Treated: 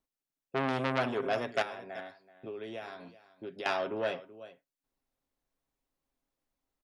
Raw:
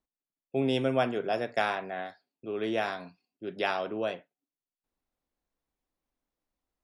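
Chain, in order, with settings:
comb filter 7.4 ms, depth 34%
0:01.62–0:03.66: downward compressor 6 to 1, threshold −39 dBFS, peak gain reduction 14 dB
single-tap delay 380 ms −17.5 dB
saturating transformer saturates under 1,800 Hz

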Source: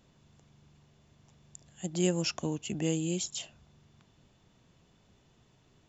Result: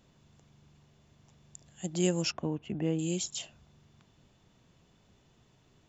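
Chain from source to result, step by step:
0:02.32–0:02.99: low-pass filter 1,900 Hz 12 dB per octave

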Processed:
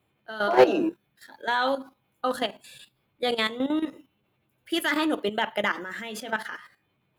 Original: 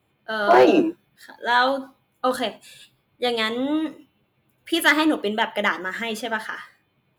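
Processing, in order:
output level in coarse steps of 12 dB

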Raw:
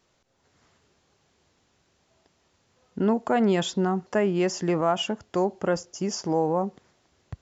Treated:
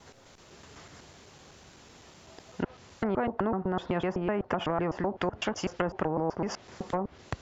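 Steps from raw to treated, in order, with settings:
slices reordered back to front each 126 ms, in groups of 4
treble cut that deepens with the level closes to 730 Hz, closed at −22 dBFS
every bin compressed towards the loudest bin 2 to 1

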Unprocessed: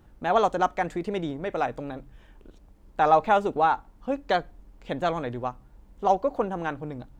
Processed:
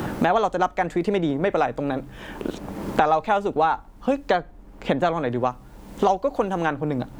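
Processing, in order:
multiband upward and downward compressor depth 100%
level +3 dB

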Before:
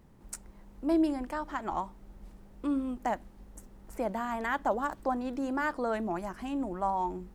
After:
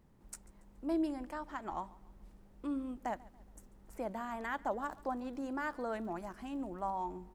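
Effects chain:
0:04.80–0:06.97: surface crackle 50 per second −46 dBFS
repeating echo 141 ms, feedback 41%, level −22 dB
level −7 dB

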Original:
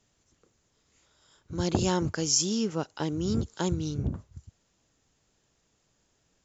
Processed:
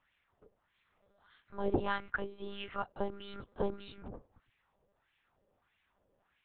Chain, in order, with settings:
dynamic equaliser 560 Hz, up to −4 dB, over −38 dBFS, Q 0.75
auto-filter band-pass sine 1.6 Hz 470–2,300 Hz
one-pitch LPC vocoder at 8 kHz 200 Hz
level +7 dB

